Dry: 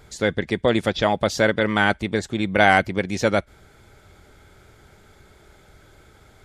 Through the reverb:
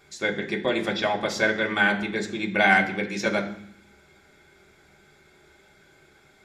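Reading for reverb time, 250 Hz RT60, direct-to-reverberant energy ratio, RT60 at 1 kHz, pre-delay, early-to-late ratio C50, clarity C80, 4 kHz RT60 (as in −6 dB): 0.65 s, 0.95 s, −0.5 dB, 0.65 s, 3 ms, 11.0 dB, 14.0 dB, 0.80 s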